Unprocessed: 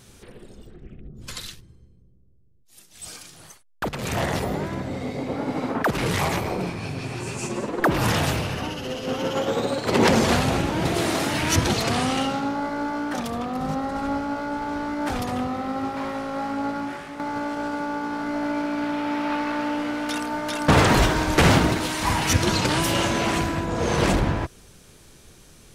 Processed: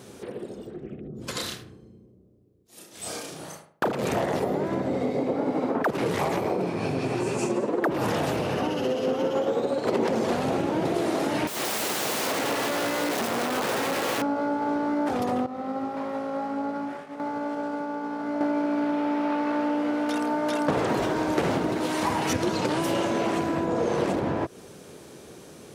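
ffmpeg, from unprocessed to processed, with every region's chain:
-filter_complex "[0:a]asettb=1/sr,asplit=3[a][b][c];[a]atrim=end=1.324[d];[b]atrim=start=1.32:end=3.93,asetpts=PTS-STARTPTS,afade=t=in:d=0.004:c=qsin,afade=t=out:st=2.606:d=0.004:c=qsin,asplit=2[e][f];[f]adelay=32,volume=-2dB[g];[e][g]amix=inputs=2:normalize=0,atrim=end_sample=115101,asplit=2[h][i];[i]adelay=76,lowpass=f=1.8k:p=1,volume=-7dB,asplit=2[j][k];[k]adelay=76,lowpass=f=1.8k:p=1,volume=0.4,asplit=2[l][m];[m]adelay=76,lowpass=f=1.8k:p=1,volume=0.4,asplit=2[n][o];[o]adelay=76,lowpass=f=1.8k:p=1,volume=0.4,asplit=2[p][q];[q]adelay=76,lowpass=f=1.8k:p=1,volume=0.4[r];[h][j][l][n][p][r]amix=inputs=6:normalize=0,atrim=end_sample=115101[s];[c]atrim=start=3.926[t];[d][s]acrossfade=d=0.004:c1=hsin:c2=qsin[u];[u][t]acrossfade=d=0.004:c1=qsin:c2=hsin,asettb=1/sr,asplit=3[v][w][x];[v]atrim=end=11.474[y];[w]atrim=start=11.47:end=14.22,asetpts=PTS-STARTPTS,afade=t=in:d=0.004:c=qsin,afade=t=out:st=2.746:d=0.004:c=qsin,aeval=exprs='(mod(17.8*val(0)+1,2)-1)/17.8':c=same,highpass=54[z];[x]atrim=start=14.216[aa];[y][z]acrossfade=d=0.004:c1=hsin:c2=qsin[ab];[ab][aa]acrossfade=d=0.004:c1=qsin:c2=hsin,asettb=1/sr,asplit=3[ac][ad][ae];[ac]atrim=end=15.464[af];[ad]atrim=start=15.46:end=18.41,asetpts=PTS-STARTPTS,afade=t=in:d=0.004:c=qsin,afade=t=out:st=2.946:d=0.004:c=qsin,bandreject=f=350:w=5.7,acompressor=threshold=-31dB:ratio=4:attack=3.2:release=140:knee=1:detection=peak,agate=range=-33dB:threshold=-30dB:ratio=3:release=100:detection=peak[ag];[ae]atrim=start=18.406[ah];[af][ag]acrossfade=d=0.004:c1=hsin:c2=qsin[ai];[ai][ah]acrossfade=d=0.004:c1=qsin:c2=hsin,highpass=110,equalizer=f=450:w=0.5:g=11.5,acompressor=threshold=-23dB:ratio=6"

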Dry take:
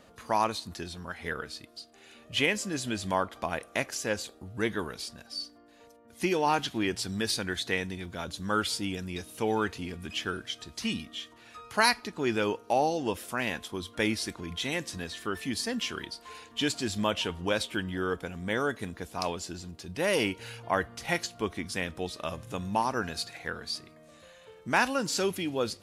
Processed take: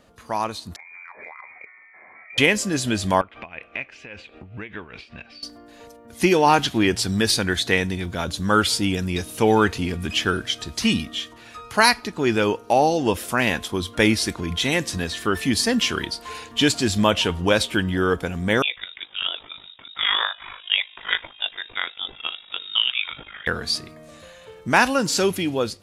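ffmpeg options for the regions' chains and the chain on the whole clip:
-filter_complex "[0:a]asettb=1/sr,asplit=3[a][b][c];[a]atrim=end=0.764[d];[b]atrim=start=0.76:end=2.38,asetpts=PTS-STARTPTS,afade=t=in:d=0.004:c=qsin,afade=t=out:st=1.616:d=0.004:c=qsin,lowpass=f=2.1k:t=q:w=0.5098,lowpass=f=2.1k:t=q:w=0.6013,lowpass=f=2.1k:t=q:w=0.9,lowpass=f=2.1k:t=q:w=2.563,afreqshift=-2500,highpass=f=410:p=1,acompressor=threshold=-45dB:ratio=12:attack=3.2:release=140:knee=1:detection=peak[e];[c]atrim=start=2.376[f];[d][e]acrossfade=d=0.004:c1=hsin:c2=qsin[g];[g][f]acrossfade=d=0.004:c1=qsin:c2=hsin,asettb=1/sr,asplit=3[h][i][j];[h]atrim=end=3.214[k];[i]atrim=start=3.21:end=5.43,asetpts=PTS-STARTPTS,afade=t=in:d=0.004:c=qsin,afade=t=out:st=2.216:d=0.004:c=qsin,acompressor=threshold=-48dB:ratio=3:attack=3.2:release=140:knee=1:detection=peak,lowpass=f=2.5k:t=q:w=5.7,tremolo=f=5.1:d=0.66[l];[j]atrim=start=5.426[m];[k][l]acrossfade=d=0.004:c1=hsin:c2=qsin[n];[n][m]acrossfade=d=0.004:c1=qsin:c2=hsin,asettb=1/sr,asplit=3[o][p][q];[o]atrim=end=18.624[r];[p]atrim=start=18.62:end=23.47,asetpts=PTS-STARTPTS,afade=t=in:d=0.004:c=qsin,afade=t=out:st=4.846:d=0.004:c=qsin,highpass=f=530:p=1,lowpass=f=3.3k:t=q:w=0.5098,lowpass=f=3.3k:t=q:w=0.6013,lowpass=f=3.3k:t=q:w=0.9,lowpass=f=3.3k:t=q:w=2.563,afreqshift=-3900,tremolo=f=51:d=0.75[s];[q]atrim=start=23.466[t];[r][s]acrossfade=d=0.004:c1=hsin:c2=qsin[u];[u][t]acrossfade=d=0.004:c1=qsin:c2=hsin,lowshelf=f=97:g=5.5,dynaudnorm=f=580:g=3:m=11.5dB"

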